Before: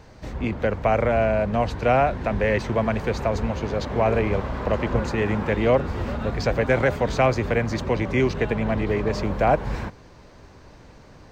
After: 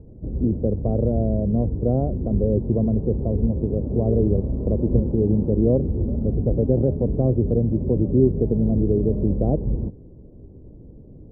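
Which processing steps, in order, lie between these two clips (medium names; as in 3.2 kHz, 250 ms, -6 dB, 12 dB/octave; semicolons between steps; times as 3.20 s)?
inverse Chebyshev low-pass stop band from 2.5 kHz, stop band 80 dB; trim +5.5 dB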